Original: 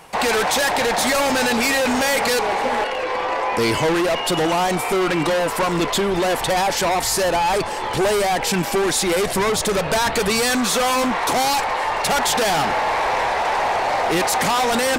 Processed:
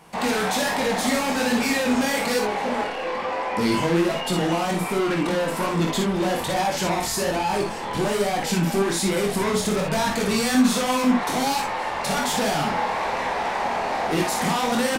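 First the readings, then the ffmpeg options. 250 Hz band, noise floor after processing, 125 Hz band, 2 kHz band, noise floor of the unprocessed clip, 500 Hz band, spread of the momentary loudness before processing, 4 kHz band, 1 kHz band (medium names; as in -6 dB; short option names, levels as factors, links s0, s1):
+1.0 dB, -28 dBFS, +1.0 dB, -5.5 dB, -25 dBFS, -4.5 dB, 3 LU, -5.5 dB, -5.0 dB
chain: -af "equalizer=f=210:t=o:w=0.81:g=10.5,flanger=delay=19:depth=7.1:speed=1.2,aecho=1:1:47|59:0.501|0.447,volume=0.631"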